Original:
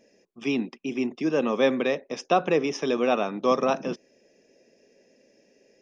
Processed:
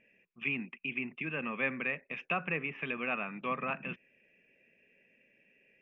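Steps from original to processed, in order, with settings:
drawn EQ curve 170 Hz 0 dB, 300 Hz −10 dB, 810 Hz −9 dB, 2,600 Hz +12 dB, 4,800 Hz −29 dB, 8,300 Hz −23 dB
treble cut that deepens with the level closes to 1,900 Hz, closed at −24.5 dBFS
dynamic equaliser 430 Hz, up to −4 dB, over −41 dBFS, Q 0.92
level −4.5 dB

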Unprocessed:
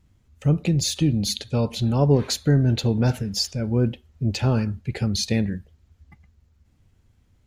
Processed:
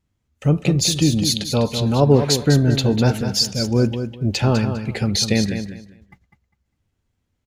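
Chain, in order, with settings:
noise gate −49 dBFS, range −14 dB
low-shelf EQ 160 Hz −7 dB
repeating echo 201 ms, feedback 22%, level −8.5 dB
level +6 dB

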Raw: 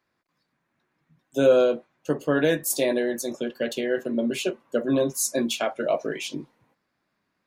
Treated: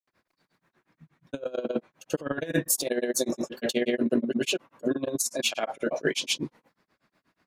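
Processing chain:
granular cloud 122 ms, grains 8.3 per second, pitch spread up and down by 0 semitones
compressor whose output falls as the input rises −30 dBFS, ratio −0.5
level +4.5 dB

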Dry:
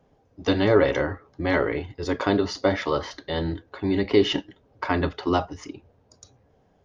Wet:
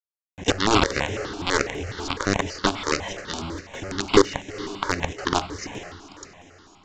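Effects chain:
low-shelf EQ 270 Hz −2.5 dB
in parallel at +1 dB: downward compressor 10 to 1, threshold −30 dBFS, peak gain reduction 17 dB
on the sum: log-companded quantiser 2 bits
on a send: feedback delay with all-pass diffusion 482 ms, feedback 42%, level −14 dB
on the sum: downsampling to 16,000 Hz
step-sequenced phaser 12 Hz 520–4,500 Hz
level −3.5 dB

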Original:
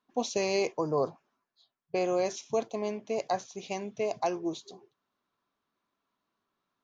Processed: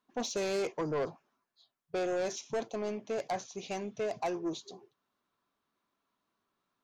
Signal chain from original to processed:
soft clipping −27.5 dBFS, distortion −11 dB

